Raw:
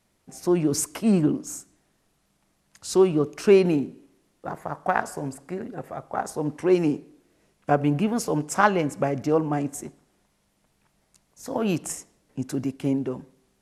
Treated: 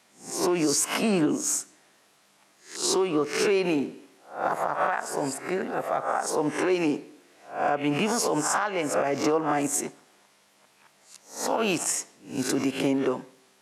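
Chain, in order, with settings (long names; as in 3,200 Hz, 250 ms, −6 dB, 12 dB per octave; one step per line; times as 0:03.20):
peak hold with a rise ahead of every peak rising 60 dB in 0.39 s
meter weighting curve A
downward compressor 12 to 1, threshold −27 dBFS, peak gain reduction 17 dB
brickwall limiter −23.5 dBFS, peak gain reduction 7.5 dB
level +9 dB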